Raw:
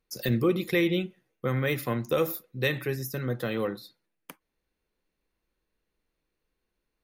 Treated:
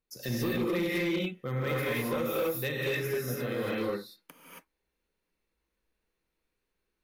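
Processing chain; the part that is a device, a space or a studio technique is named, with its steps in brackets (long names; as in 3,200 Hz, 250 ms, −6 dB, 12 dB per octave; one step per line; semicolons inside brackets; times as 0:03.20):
reverb whose tail is shaped and stops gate 300 ms rising, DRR −7 dB
limiter into clipper (brickwall limiter −12.5 dBFS, peak gain reduction 6.5 dB; hard clipping −17.5 dBFS, distortion −17 dB)
level −7.5 dB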